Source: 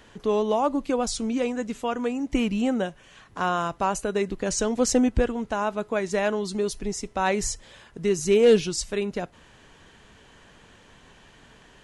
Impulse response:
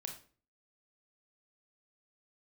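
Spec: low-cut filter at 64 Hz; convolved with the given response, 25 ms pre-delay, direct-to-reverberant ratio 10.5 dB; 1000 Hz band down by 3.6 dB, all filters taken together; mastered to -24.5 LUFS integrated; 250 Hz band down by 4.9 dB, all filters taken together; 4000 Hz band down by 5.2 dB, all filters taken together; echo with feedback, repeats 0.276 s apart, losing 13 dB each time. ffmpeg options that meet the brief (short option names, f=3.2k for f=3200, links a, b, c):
-filter_complex "[0:a]highpass=64,equalizer=f=250:t=o:g=-5.5,equalizer=f=1k:t=o:g=-4,equalizer=f=4k:t=o:g=-7.5,aecho=1:1:276|552|828:0.224|0.0493|0.0108,asplit=2[a][b];[1:a]atrim=start_sample=2205,adelay=25[c];[b][c]afir=irnorm=-1:irlink=0,volume=-8dB[d];[a][d]amix=inputs=2:normalize=0,volume=3dB"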